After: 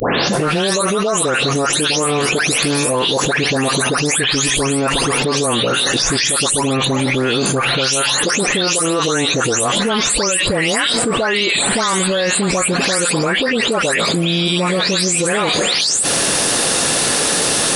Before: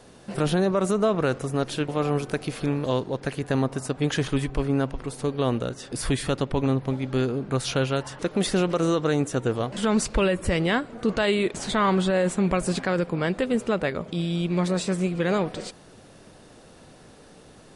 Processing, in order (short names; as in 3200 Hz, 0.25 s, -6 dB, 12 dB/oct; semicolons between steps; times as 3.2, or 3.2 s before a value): spectral delay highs late, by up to 0.333 s; tilt +3.5 dB/oct; fast leveller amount 100%; gain +1 dB